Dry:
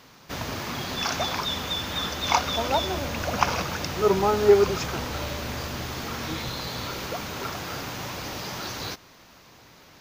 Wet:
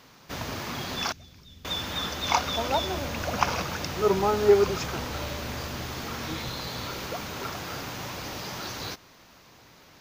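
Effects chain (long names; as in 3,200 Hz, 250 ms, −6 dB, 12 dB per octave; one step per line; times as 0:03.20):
0:01.12–0:01.65: guitar amp tone stack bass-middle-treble 10-0-1
0:06.84–0:07.26: surface crackle 570 per second −48 dBFS
level −2 dB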